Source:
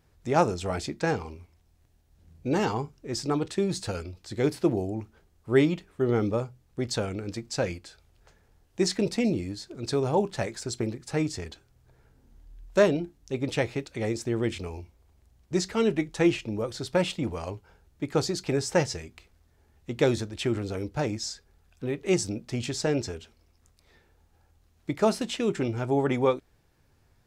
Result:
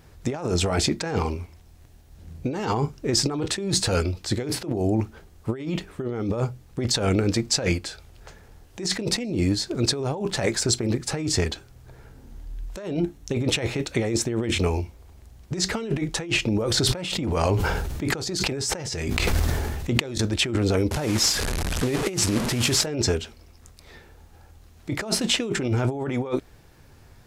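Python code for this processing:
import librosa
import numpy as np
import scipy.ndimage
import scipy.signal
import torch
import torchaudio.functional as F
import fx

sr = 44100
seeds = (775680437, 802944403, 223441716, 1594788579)

y = fx.notch(x, sr, hz=4800.0, q=12.0, at=(12.82, 14.76))
y = fx.sustainer(y, sr, db_per_s=25.0, at=(16.54, 20.18))
y = fx.delta_mod(y, sr, bps=64000, step_db=-33.0, at=(20.91, 22.86))
y = fx.over_compress(y, sr, threshold_db=-33.0, ratio=-1.0)
y = y * 10.0 ** (8.0 / 20.0)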